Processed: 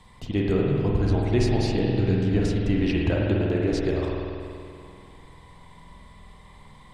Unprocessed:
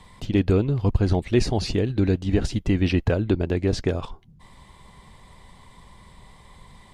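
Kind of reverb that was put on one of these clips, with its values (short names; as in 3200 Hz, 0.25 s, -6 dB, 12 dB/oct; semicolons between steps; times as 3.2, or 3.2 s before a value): spring tank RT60 2.5 s, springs 48 ms, chirp 65 ms, DRR -2.5 dB; gain -4.5 dB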